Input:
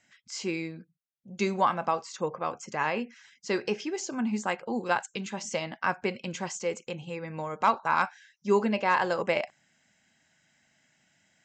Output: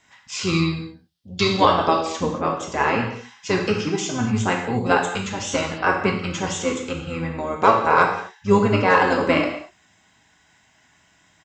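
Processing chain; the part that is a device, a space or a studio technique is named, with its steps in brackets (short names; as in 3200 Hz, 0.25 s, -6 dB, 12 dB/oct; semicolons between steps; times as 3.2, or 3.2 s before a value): octave pedal (harmoniser -12 st -4 dB); 0.43–2 band shelf 4000 Hz +11 dB 1 oct; non-linear reverb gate 0.27 s falling, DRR 0.5 dB; gain +5.5 dB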